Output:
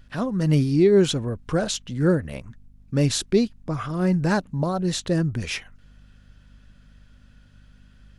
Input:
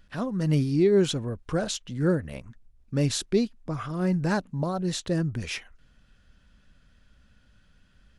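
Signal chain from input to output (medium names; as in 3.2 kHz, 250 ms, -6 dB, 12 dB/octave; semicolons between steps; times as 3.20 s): hum 50 Hz, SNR 29 dB; trim +4 dB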